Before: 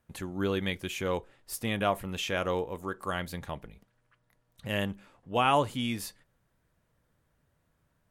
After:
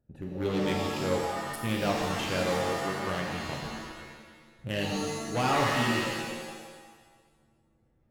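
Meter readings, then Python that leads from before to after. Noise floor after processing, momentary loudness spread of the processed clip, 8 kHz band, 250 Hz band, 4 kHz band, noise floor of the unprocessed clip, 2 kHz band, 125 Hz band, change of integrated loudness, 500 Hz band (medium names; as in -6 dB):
-68 dBFS, 16 LU, +3.5 dB, +3.0 dB, +2.0 dB, -74 dBFS, +3.0 dB, +3.0 dB, +1.5 dB, +2.0 dB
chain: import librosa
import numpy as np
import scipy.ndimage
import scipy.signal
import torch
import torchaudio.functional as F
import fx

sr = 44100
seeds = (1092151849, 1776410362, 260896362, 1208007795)

y = fx.wiener(x, sr, points=41)
y = np.clip(y, -10.0 ** (-26.0 / 20.0), 10.0 ** (-26.0 / 20.0))
y = fx.rev_shimmer(y, sr, seeds[0], rt60_s=1.4, semitones=7, shimmer_db=-2, drr_db=-0.5)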